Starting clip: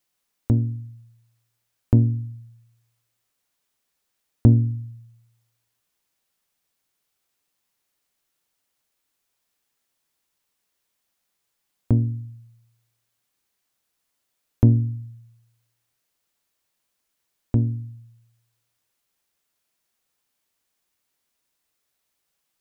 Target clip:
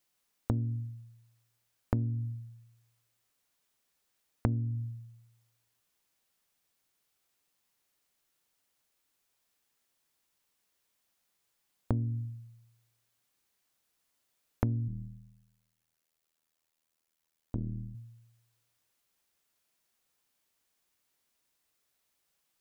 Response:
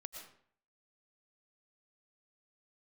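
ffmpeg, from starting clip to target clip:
-filter_complex "[0:a]acompressor=threshold=-25dB:ratio=12,asettb=1/sr,asplit=3[link_01][link_02][link_03];[link_01]atrim=end=14.884[link_04];[link_02]atrim=start=14.88:end=17.95,asetpts=PTS-STARTPTS,afade=type=in:duration=0.004:curve=qsin,afade=type=out:start_time=3.066:duration=0.004:curve=qsin,tremolo=f=80:d=0.974[link_05];[link_03]atrim=start=17.946[link_06];[link_04][link_05]acrossfade=duration=0.004:curve1=hsin:curve2=qsin[link_07];[link_07][link_06]acrossfade=duration=0.004:curve1=qsin:curve2=hsin,volume=-1.5dB"

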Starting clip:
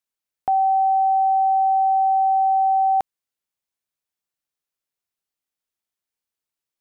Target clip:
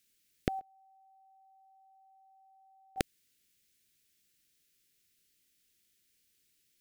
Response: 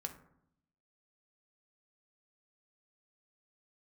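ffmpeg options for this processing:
-filter_complex "[0:a]asplit=3[link_01][link_02][link_03];[link_01]afade=type=out:start_time=0.59:duration=0.02[link_04];[link_02]agate=range=-26dB:threshold=-7dB:ratio=16:detection=peak,afade=type=in:start_time=0.59:duration=0.02,afade=type=out:start_time=2.96:duration=0.02[link_05];[link_03]afade=type=in:start_time=2.96:duration=0.02[link_06];[link_04][link_05][link_06]amix=inputs=3:normalize=0,asuperstop=centerf=870:order=4:qfactor=0.57,volume=14.5dB"

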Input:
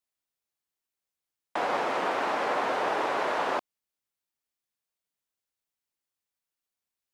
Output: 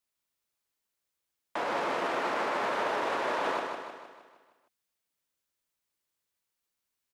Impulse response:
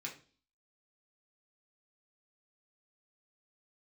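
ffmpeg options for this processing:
-af "bandreject=frequency=760:width=12,alimiter=level_in=2dB:limit=-24dB:level=0:latency=1,volume=-2dB,aecho=1:1:155|310|465|620|775|930|1085:0.562|0.292|0.152|0.0791|0.0411|0.0214|0.0111,volume=2.5dB"

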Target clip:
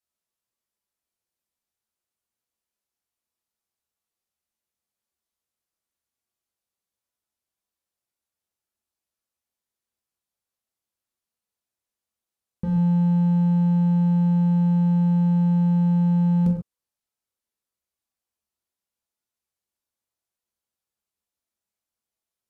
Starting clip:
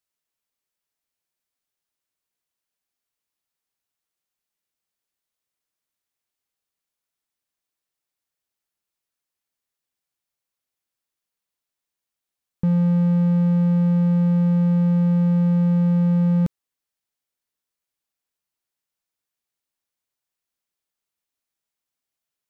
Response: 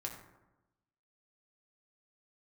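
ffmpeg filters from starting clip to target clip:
-filter_complex "[0:a]equalizer=frequency=2100:width_type=o:width=1.9:gain=-2.5[link_01];[1:a]atrim=start_sample=2205,afade=type=out:start_time=0.14:duration=0.01,atrim=end_sample=6615,asetrate=27342,aresample=44100[link_02];[link_01][link_02]afir=irnorm=-1:irlink=0,volume=-2.5dB"

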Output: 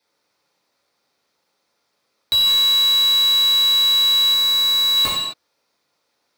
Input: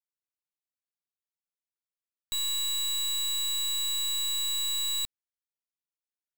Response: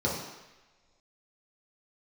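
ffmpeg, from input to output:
-filter_complex "[1:a]atrim=start_sample=2205,afade=type=out:start_time=0.33:duration=0.01,atrim=end_sample=14994[link_01];[0:a][link_01]afir=irnorm=-1:irlink=0,asplit=2[link_02][link_03];[link_03]highpass=frequency=720:poles=1,volume=25dB,asoftclip=type=tanh:threshold=-11.5dB[link_04];[link_02][link_04]amix=inputs=2:normalize=0,lowpass=frequency=3400:poles=1,volume=-6dB,asettb=1/sr,asplit=3[link_05][link_06][link_07];[link_05]atrim=end=4.344[link_08];[link_06]atrim=start=4.34:end=4.97,asetpts=PTS-STARTPTS,afade=type=in:duration=0.004:curve=qsin,afade=type=out:start_time=0.626:duration=0.004:curve=qsin,equalizer=frequency=3100:width=5.9:gain=-12[link_09];[link_07]atrim=start=4.966[link_10];[link_08][link_09]acrossfade=duration=0.004:curve1=hsin:curve2=qsin[link_11];[link_11][link_10]acrossfade=duration=0.004:curve1=qsin:curve2=hsin,volume=4.5dB"

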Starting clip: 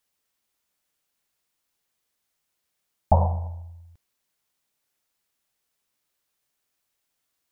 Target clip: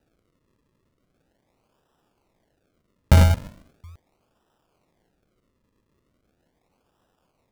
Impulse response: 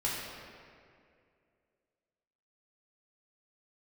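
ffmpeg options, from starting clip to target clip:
-filter_complex "[0:a]asettb=1/sr,asplit=3[link_01][link_02][link_03];[link_01]atrim=end=3.344[link_04];[link_02]atrim=start=3.34:end=3.84,asetpts=PTS-STARTPTS,afade=type=in:duration=0.004:curve=qsin,afade=type=out:start_time=0.496:duration=0.004:curve=qsin,highpass=frequency=430:width=0.5412,highpass=frequency=430:width=1.3066[link_05];[link_03]atrim=start=3.836[link_06];[link_04][link_05]acrossfade=duration=0.004:curve1=hsin:curve2=qsin[link_07];[link_07][link_06]acrossfade=duration=0.004:curve1=qsin:curve2=hsin,acrusher=samples=40:mix=1:aa=0.000001:lfo=1:lforange=40:lforate=0.39,asplit=2[link_08][link_09];[link_09]aeval=exprs='0.106*(abs(mod(val(0)/0.106+3,4)-2)-1)':channel_layout=same,volume=-8.5dB[link_10];[link_08][link_10]amix=inputs=2:normalize=0,volume=5.5dB"

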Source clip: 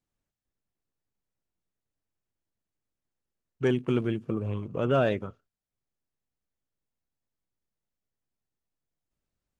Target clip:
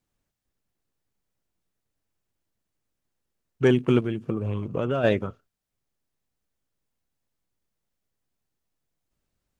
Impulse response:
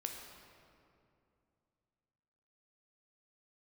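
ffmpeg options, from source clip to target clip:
-filter_complex "[0:a]asplit=3[link_01][link_02][link_03];[link_01]afade=type=out:start_time=3.99:duration=0.02[link_04];[link_02]acompressor=threshold=-29dB:ratio=6,afade=type=in:start_time=3.99:duration=0.02,afade=type=out:start_time=5.03:duration=0.02[link_05];[link_03]afade=type=in:start_time=5.03:duration=0.02[link_06];[link_04][link_05][link_06]amix=inputs=3:normalize=0,volume=6dB"

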